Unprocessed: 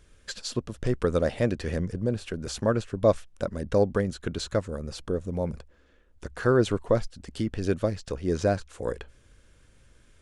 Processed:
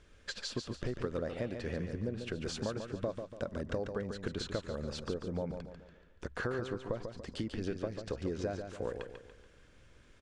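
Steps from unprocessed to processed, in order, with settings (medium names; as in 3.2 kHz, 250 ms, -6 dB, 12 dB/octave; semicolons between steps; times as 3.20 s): bass shelf 160 Hz -5.5 dB; compression 10:1, threshold -33 dBFS, peak gain reduction 18 dB; distance through air 81 m; feedback delay 143 ms, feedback 42%, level -7 dB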